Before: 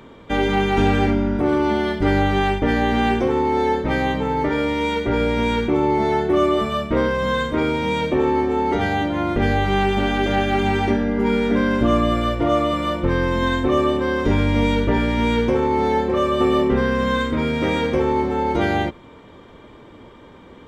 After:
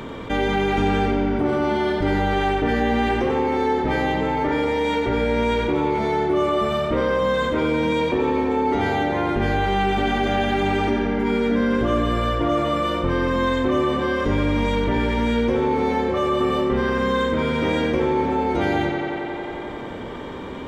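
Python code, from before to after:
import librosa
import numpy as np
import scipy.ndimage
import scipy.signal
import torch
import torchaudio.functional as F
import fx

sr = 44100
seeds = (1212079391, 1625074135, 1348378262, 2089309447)

p1 = x + fx.echo_tape(x, sr, ms=89, feedback_pct=84, wet_db=-7.0, lp_hz=6000.0, drive_db=6.0, wow_cents=11, dry=0)
p2 = fx.env_flatten(p1, sr, amount_pct=50)
y = p2 * librosa.db_to_amplitude(-5.0)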